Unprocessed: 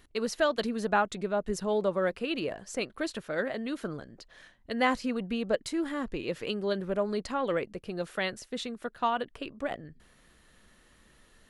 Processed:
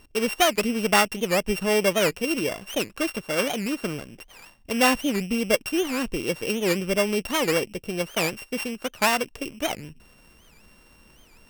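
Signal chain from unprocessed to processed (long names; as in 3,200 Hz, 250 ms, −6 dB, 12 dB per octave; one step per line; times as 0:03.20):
samples sorted by size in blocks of 16 samples
wow of a warped record 78 rpm, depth 250 cents
level +6.5 dB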